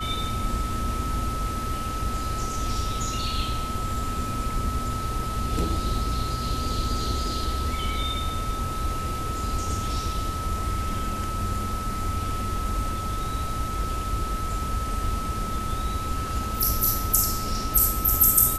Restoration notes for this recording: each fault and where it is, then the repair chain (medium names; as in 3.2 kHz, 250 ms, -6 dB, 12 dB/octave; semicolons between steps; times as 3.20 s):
whine 1.3 kHz -31 dBFS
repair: band-stop 1.3 kHz, Q 30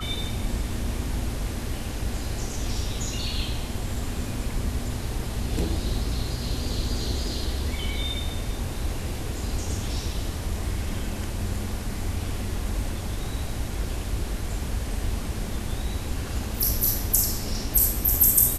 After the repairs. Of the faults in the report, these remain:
nothing left